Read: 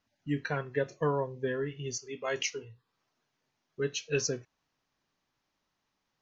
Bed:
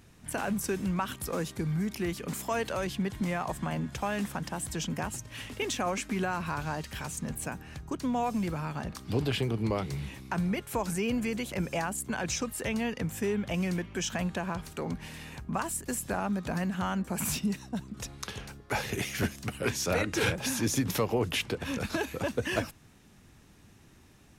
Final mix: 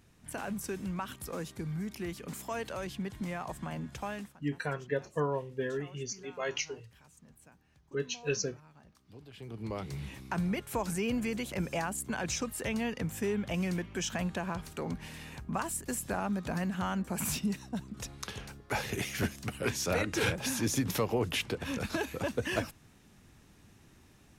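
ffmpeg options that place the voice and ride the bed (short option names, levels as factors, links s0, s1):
-filter_complex "[0:a]adelay=4150,volume=0.794[s0];[1:a]volume=5.62,afade=t=out:st=4.1:d=0.24:silence=0.141254,afade=t=in:st=9.33:d=0.84:silence=0.0891251[s1];[s0][s1]amix=inputs=2:normalize=0"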